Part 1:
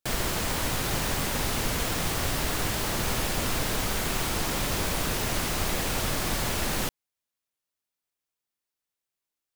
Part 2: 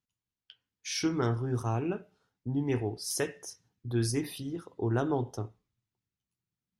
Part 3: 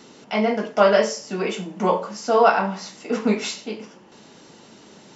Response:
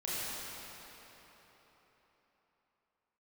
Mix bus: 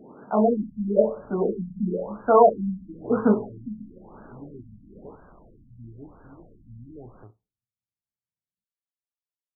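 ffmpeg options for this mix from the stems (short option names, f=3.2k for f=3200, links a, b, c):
-filter_complex "[0:a]aeval=exprs='0.0447*(abs(mod(val(0)/0.0447+3,4)-2)-1)':c=same,adelay=350,volume=-16dB[a];[1:a]adelay=1850,volume=-13dB[b];[2:a]equalizer=f=3.1k:t=o:w=2.7:g=4.5,volume=1dB[c];[a][b][c]amix=inputs=3:normalize=0,afftfilt=real='re*lt(b*sr/1024,250*pow(1700/250,0.5+0.5*sin(2*PI*1*pts/sr)))':imag='im*lt(b*sr/1024,250*pow(1700/250,0.5+0.5*sin(2*PI*1*pts/sr)))':win_size=1024:overlap=0.75"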